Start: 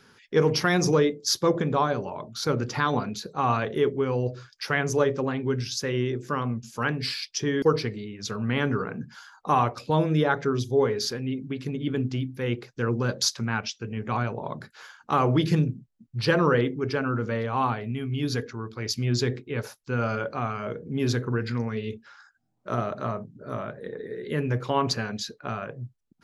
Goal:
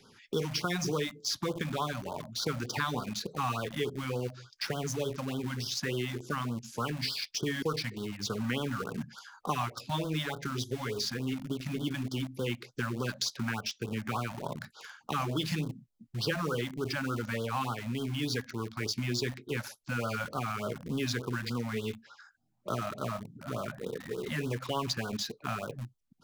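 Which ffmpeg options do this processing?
-filter_complex "[0:a]acrossover=split=210|1600|4000[s0][s1][s2][s3];[s0]acompressor=threshold=0.00891:ratio=4[s4];[s1]acompressor=threshold=0.0158:ratio=4[s5];[s2]acompressor=threshold=0.0126:ratio=4[s6];[s3]acompressor=threshold=0.00891:ratio=4[s7];[s4][s5][s6][s7]amix=inputs=4:normalize=0,asplit=2[s8][s9];[s9]acrusher=bits=5:mix=0:aa=0.000001,volume=0.398[s10];[s8][s10]amix=inputs=2:normalize=0,afftfilt=real='re*(1-between(b*sr/1024,360*pow(2200/360,0.5+0.5*sin(2*PI*3.4*pts/sr))/1.41,360*pow(2200/360,0.5+0.5*sin(2*PI*3.4*pts/sr))*1.41))':imag='im*(1-between(b*sr/1024,360*pow(2200/360,0.5+0.5*sin(2*PI*3.4*pts/sr))/1.41,360*pow(2200/360,0.5+0.5*sin(2*PI*3.4*pts/sr))*1.41))':win_size=1024:overlap=0.75,volume=0.891"

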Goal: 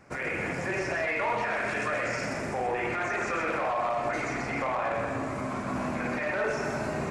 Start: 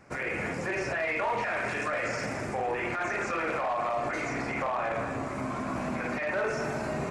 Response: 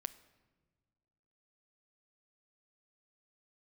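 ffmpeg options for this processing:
-filter_complex "[0:a]asplit=2[s0][s1];[1:a]atrim=start_sample=2205,adelay=127[s2];[s1][s2]afir=irnorm=-1:irlink=0,volume=0.668[s3];[s0][s3]amix=inputs=2:normalize=0"

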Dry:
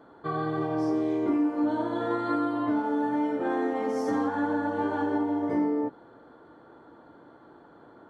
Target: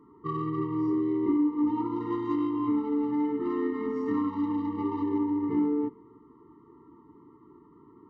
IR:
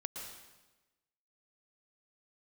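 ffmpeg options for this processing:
-filter_complex "[0:a]adynamicsmooth=sensitivity=1.5:basefreq=1700,asplit=2[s0][s1];[1:a]atrim=start_sample=2205,asetrate=52920,aresample=44100[s2];[s1][s2]afir=irnorm=-1:irlink=0,volume=0.141[s3];[s0][s3]amix=inputs=2:normalize=0,afftfilt=real='re*eq(mod(floor(b*sr/1024/450),2),0)':imag='im*eq(mod(floor(b*sr/1024/450),2),0)':win_size=1024:overlap=0.75"

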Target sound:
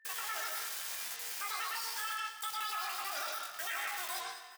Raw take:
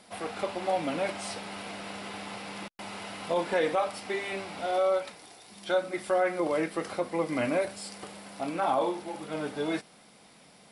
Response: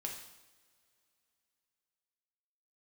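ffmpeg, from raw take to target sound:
-filter_complex "[0:a]asubboost=boost=3:cutoff=66,acrusher=bits=5:mix=0:aa=0.000001,aeval=exprs='val(0)+0.00112*sin(2*PI*760*n/s)':c=same,aemphasis=mode=production:type=riaa,aecho=1:1:486|972|1458|1944:0.0891|0.0446|0.0223|0.0111,asetrate=103194,aresample=44100,acompressor=threshold=0.0316:ratio=2.5,asoftclip=type=tanh:threshold=0.126,asplit=2[s0][s1];[1:a]atrim=start_sample=2205,lowpass=5600,adelay=110[s2];[s1][s2]afir=irnorm=-1:irlink=0,volume=1.06[s3];[s0][s3]amix=inputs=2:normalize=0,flanger=delay=19:depth=3.3:speed=0.22,alimiter=level_in=1.78:limit=0.0631:level=0:latency=1:release=15,volume=0.562"

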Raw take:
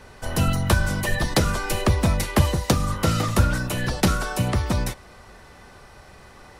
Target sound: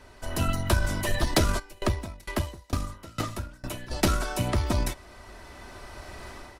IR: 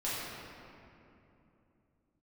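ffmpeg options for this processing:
-filter_complex "[0:a]aecho=1:1:3.1:0.45,dynaudnorm=f=630:g=3:m=3.98,aeval=exprs='0.944*(cos(1*acos(clip(val(0)/0.944,-1,1)))-cos(1*PI/2))+0.0473*(cos(6*acos(clip(val(0)/0.944,-1,1)))-cos(6*PI/2))':c=same,asplit=3[s0][s1][s2];[s0]afade=t=out:st=1.58:d=0.02[s3];[s1]aeval=exprs='val(0)*pow(10,-28*if(lt(mod(2.2*n/s,1),2*abs(2.2)/1000),1-mod(2.2*n/s,1)/(2*abs(2.2)/1000),(mod(2.2*n/s,1)-2*abs(2.2)/1000)/(1-2*abs(2.2)/1000))/20)':c=same,afade=t=in:st=1.58:d=0.02,afade=t=out:st=3.9:d=0.02[s4];[s2]afade=t=in:st=3.9:d=0.02[s5];[s3][s4][s5]amix=inputs=3:normalize=0,volume=0.501"

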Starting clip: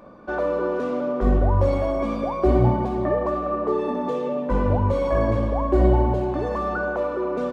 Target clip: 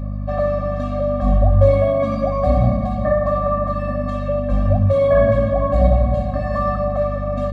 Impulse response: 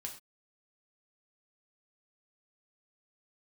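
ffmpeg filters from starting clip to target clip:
-filter_complex "[0:a]equalizer=f=250:t=o:w=0.33:g=-4,equalizer=f=500:t=o:w=0.33:g=11,equalizer=f=1600:t=o:w=0.33:g=5,equalizer=f=4000:t=o:w=0.33:g=7,aeval=exprs='val(0)+0.0447*(sin(2*PI*50*n/s)+sin(2*PI*2*50*n/s)/2+sin(2*PI*3*50*n/s)/3+sin(2*PI*4*50*n/s)/4+sin(2*PI*5*50*n/s)/5)':c=same,asplit=2[s0][s1];[1:a]atrim=start_sample=2205,asetrate=70560,aresample=44100[s2];[s1][s2]afir=irnorm=-1:irlink=0,volume=1.33[s3];[s0][s3]amix=inputs=2:normalize=0,afftfilt=real='re*eq(mod(floor(b*sr/1024/260),2),0)':imag='im*eq(mod(floor(b*sr/1024/260),2),0)':win_size=1024:overlap=0.75"

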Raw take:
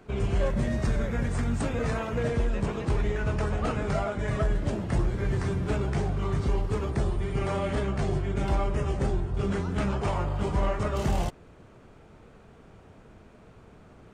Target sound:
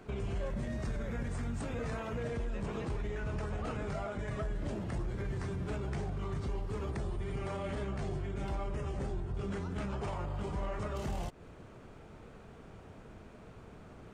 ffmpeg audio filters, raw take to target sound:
-af "alimiter=level_in=1.88:limit=0.0631:level=0:latency=1:release=154,volume=0.531"

